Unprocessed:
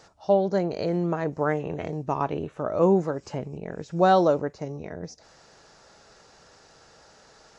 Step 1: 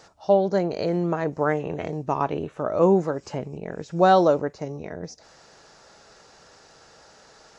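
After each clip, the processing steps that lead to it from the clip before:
low-shelf EQ 170 Hz −3.5 dB
level +2.5 dB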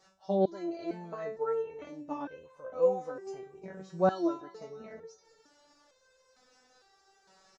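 repeating echo 349 ms, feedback 47%, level −20.5 dB
step-sequenced resonator 2.2 Hz 190–520 Hz
level +1.5 dB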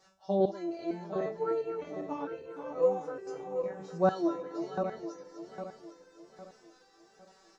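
feedback delay that plays each chunk backwards 403 ms, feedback 60%, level −7.5 dB

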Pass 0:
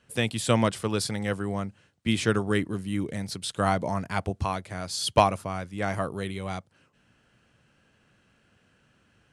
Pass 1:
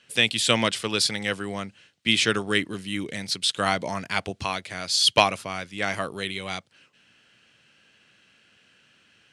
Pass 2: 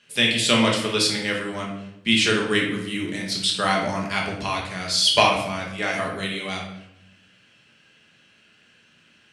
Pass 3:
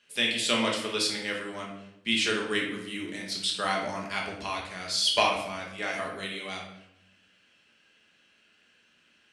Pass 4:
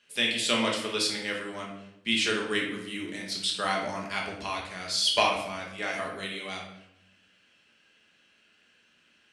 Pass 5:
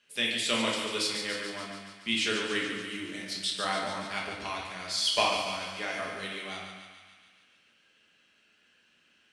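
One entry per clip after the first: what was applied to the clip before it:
meter weighting curve D
rectangular room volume 230 cubic metres, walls mixed, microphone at 1.3 metres; level −1.5 dB
parametric band 130 Hz −11.5 dB 0.92 octaves; level −6.5 dB
no processing that can be heard
harmonic generator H 4 −34 dB, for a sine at −7.5 dBFS; feedback echo with a high-pass in the loop 143 ms, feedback 66%, high-pass 560 Hz, level −7 dB; level −3 dB

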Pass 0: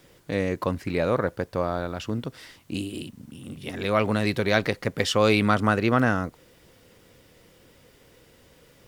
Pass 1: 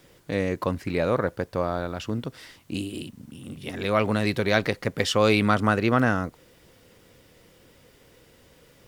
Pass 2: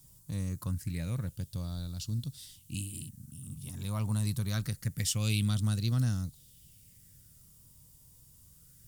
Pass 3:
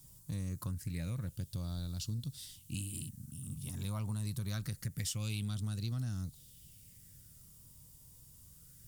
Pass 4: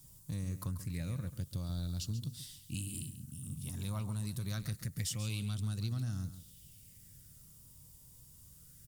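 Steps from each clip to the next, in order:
no processing that can be heard
drawn EQ curve 140 Hz 0 dB, 420 Hz −26 dB, 2,100 Hz −25 dB, 8,700 Hz +6 dB; auto-filter bell 0.25 Hz 950–4,200 Hz +12 dB
in parallel at −8 dB: soft clipping −31 dBFS, distortion −11 dB; on the sum: downward compressor 6 to 1, threshold −32 dBFS, peak gain reduction 8 dB; level −2.5 dB
repeating echo 137 ms, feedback 16%, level −12 dB

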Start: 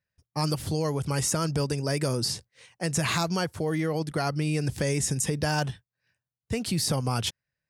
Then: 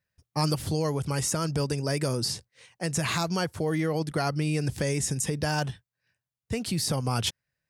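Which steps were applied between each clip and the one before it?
speech leveller within 3 dB 0.5 s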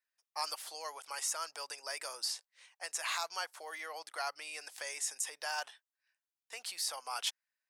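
high-pass filter 750 Hz 24 dB per octave
level −6 dB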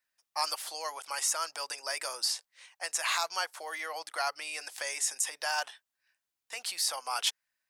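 notch filter 440 Hz, Q 12
level +6 dB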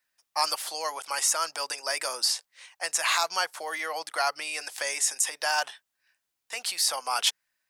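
dynamic equaliser 180 Hz, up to +8 dB, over −59 dBFS, Q 0.88
level +5 dB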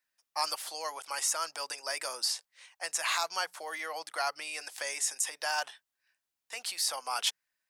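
mains-hum notches 60/120/180 Hz
level −5.5 dB

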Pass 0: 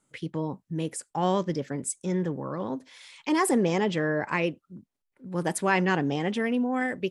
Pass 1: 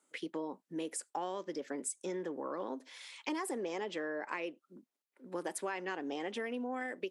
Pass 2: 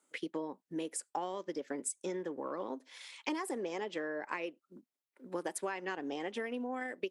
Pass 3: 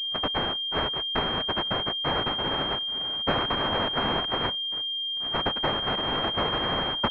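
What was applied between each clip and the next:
high-pass filter 280 Hz 24 dB per octave; downward compressor 10 to 1, threshold −33 dBFS, peak gain reduction 15 dB; level −1.5 dB
transient designer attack +2 dB, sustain −5 dB
each half-wave held at its own peak; cochlear-implant simulation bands 1; switching amplifier with a slow clock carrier 3,200 Hz; level +9 dB

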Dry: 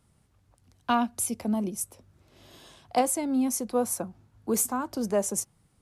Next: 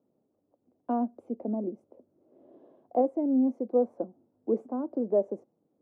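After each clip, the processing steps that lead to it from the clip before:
Chebyshev band-pass filter 270–590 Hz, order 2
level +3 dB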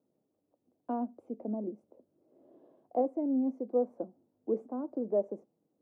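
convolution reverb RT60 0.25 s, pre-delay 6 ms, DRR 19 dB
level −4.5 dB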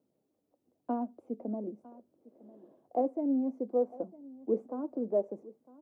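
phase shifter 1.1 Hz, delay 4.8 ms, feedback 24%
single-tap delay 954 ms −20 dB

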